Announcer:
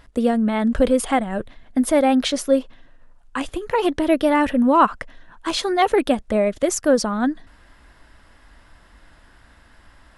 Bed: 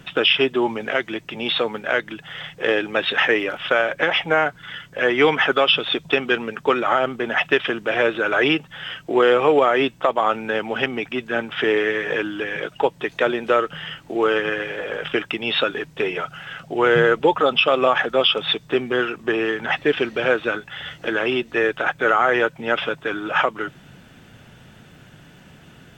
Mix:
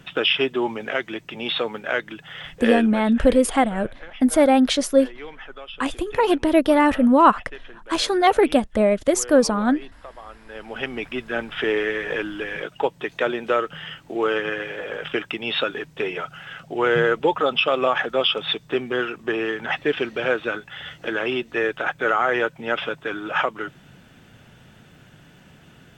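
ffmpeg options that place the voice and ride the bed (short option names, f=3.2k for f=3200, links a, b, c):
-filter_complex "[0:a]adelay=2450,volume=1dB[a];[1:a]volume=16dB,afade=t=out:st=2.77:d=0.28:silence=0.112202,afade=t=in:st=10.46:d=0.57:silence=0.112202[b];[a][b]amix=inputs=2:normalize=0"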